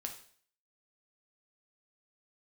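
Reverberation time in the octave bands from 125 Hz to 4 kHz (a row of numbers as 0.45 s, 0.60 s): 0.55 s, 0.55 s, 0.55 s, 0.50 s, 0.50 s, 0.50 s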